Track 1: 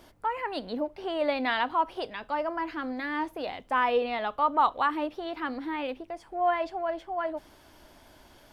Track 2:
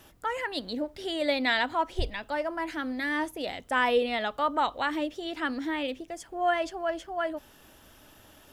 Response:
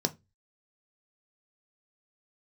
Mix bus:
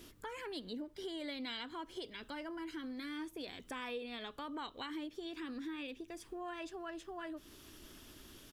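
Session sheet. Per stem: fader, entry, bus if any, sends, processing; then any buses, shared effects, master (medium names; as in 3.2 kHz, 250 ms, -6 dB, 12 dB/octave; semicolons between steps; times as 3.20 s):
0.0 dB, 0.00 s, send -23.5 dB, high-order bell 1.1 kHz -13.5 dB 2.3 oct
-2.5 dB, 0.7 ms, no send, spectral gate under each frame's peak -10 dB weak; steep high-pass 1 kHz 48 dB/octave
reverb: on, RT60 0.20 s, pre-delay 3 ms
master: compression 3:1, threshold -44 dBFS, peak gain reduction 14.5 dB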